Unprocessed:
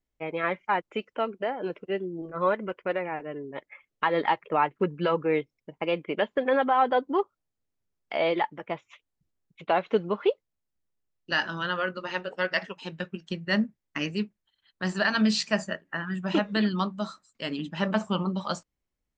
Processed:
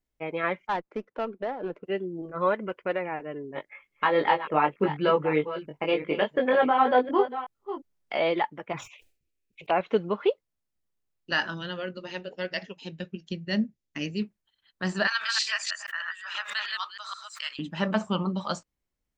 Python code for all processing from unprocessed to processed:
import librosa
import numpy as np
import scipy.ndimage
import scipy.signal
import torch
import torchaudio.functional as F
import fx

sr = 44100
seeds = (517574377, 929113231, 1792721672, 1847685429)

y = fx.chain(x, sr, fx.median_filter(points=15),
    fx.bandpass_edges(low_hz=120.0, high_hz=2600.0),
    fx.tube_stage(drive_db=20.0, bias=0.3), at=(0.67, 1.83))
y = fx.chain(y, sr, fx.reverse_delay(ms=356, wet_db=-11.5),
    fx.doubler(ms=20.0, db=-3.0), at=(3.53, 8.2))
y = fx.chain(y, sr, fx.peak_eq(hz=2500.0, db=10.5, octaves=0.34),
    fx.env_phaser(low_hz=150.0, high_hz=3700.0, full_db=-23.5),
    fx.sustainer(db_per_s=120.0), at=(8.72, 9.81))
y = fx.chain(y, sr, fx.brickwall_lowpass(high_hz=7500.0),
    fx.peak_eq(hz=1200.0, db=-13.0, octaves=1.3), at=(11.54, 14.22))
y = fx.chain(y, sr, fx.reverse_delay(ms=159, wet_db=-2),
    fx.highpass(hz=1200.0, slope=24),
    fx.pre_swell(db_per_s=110.0), at=(15.07, 17.59))